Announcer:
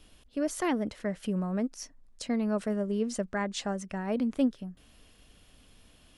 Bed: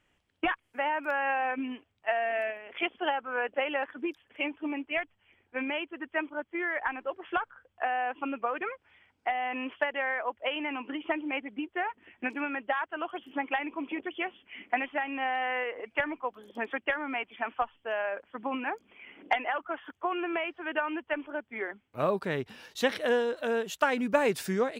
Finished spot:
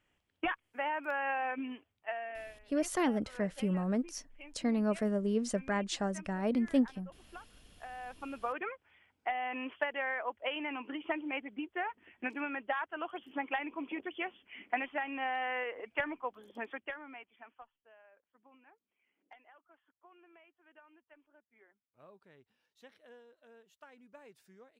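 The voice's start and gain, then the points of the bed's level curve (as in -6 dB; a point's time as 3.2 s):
2.35 s, -1.5 dB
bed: 1.83 s -5 dB
2.79 s -20 dB
7.71 s -20 dB
8.51 s -4.5 dB
16.47 s -4.5 dB
17.99 s -30 dB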